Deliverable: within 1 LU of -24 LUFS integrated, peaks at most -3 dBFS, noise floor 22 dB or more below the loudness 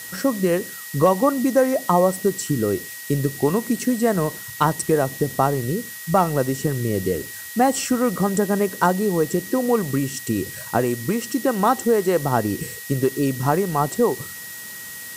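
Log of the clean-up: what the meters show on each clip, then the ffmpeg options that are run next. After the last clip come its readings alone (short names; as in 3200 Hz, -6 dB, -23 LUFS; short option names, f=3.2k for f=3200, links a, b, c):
steady tone 1900 Hz; tone level -38 dBFS; noise floor -36 dBFS; noise floor target -44 dBFS; loudness -21.5 LUFS; peak -4.5 dBFS; loudness target -24.0 LUFS
-> -af "bandreject=f=1.9k:w=30"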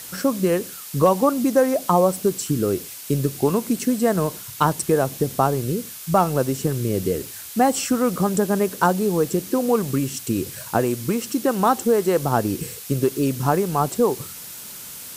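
steady tone none; noise floor -37 dBFS; noise floor target -44 dBFS
-> -af "afftdn=nr=7:nf=-37"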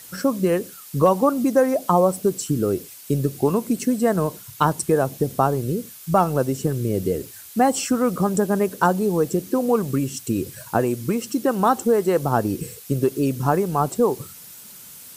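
noise floor -42 dBFS; noise floor target -44 dBFS
-> -af "afftdn=nr=6:nf=-42"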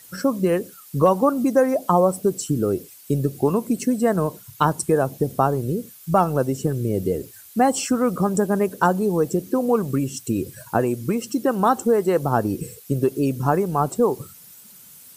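noise floor -46 dBFS; loudness -22.0 LUFS; peak -5.0 dBFS; loudness target -24.0 LUFS
-> -af "volume=-2dB"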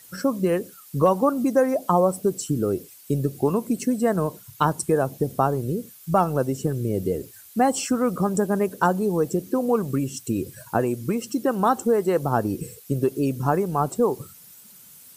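loudness -24.0 LUFS; peak -7.0 dBFS; noise floor -48 dBFS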